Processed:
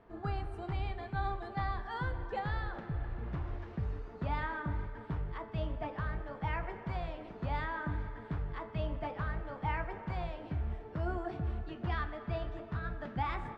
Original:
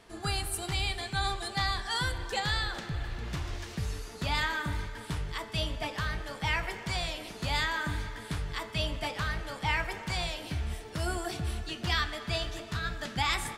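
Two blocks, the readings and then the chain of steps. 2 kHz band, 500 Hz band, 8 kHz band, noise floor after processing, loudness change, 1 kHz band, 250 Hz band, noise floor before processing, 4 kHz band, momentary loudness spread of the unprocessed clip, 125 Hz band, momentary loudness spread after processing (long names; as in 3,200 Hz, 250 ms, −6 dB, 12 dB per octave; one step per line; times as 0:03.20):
−10.0 dB, −2.0 dB, below −35 dB, −49 dBFS, −5.5 dB, −3.5 dB, −2.0 dB, −45 dBFS, −21.0 dB, 8 LU, −2.0 dB, 4 LU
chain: low-pass filter 1,200 Hz 12 dB per octave
level −2 dB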